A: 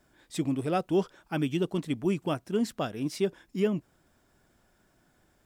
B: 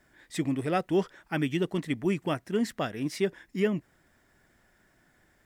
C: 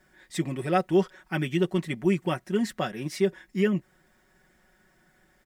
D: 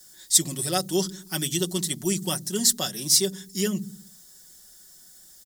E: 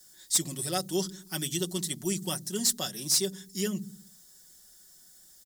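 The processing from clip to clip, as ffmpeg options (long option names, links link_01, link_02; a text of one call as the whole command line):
ffmpeg -i in.wav -af "equalizer=frequency=1900:width=3.2:gain=11" out.wav
ffmpeg -i in.wav -af "aecho=1:1:5.4:0.68" out.wav
ffmpeg -i in.wav -filter_complex "[0:a]acrossover=split=260[link_01][link_02];[link_01]aecho=1:1:63|126|189|252|315|378|441:0.562|0.315|0.176|0.0988|0.0553|0.031|0.0173[link_03];[link_02]aexciter=amount=12.9:drive=7.9:freq=3700[link_04];[link_03][link_04]amix=inputs=2:normalize=0,volume=-3.5dB" out.wav
ffmpeg -i in.wav -af "asoftclip=type=hard:threshold=-12.5dB,volume=-5dB" out.wav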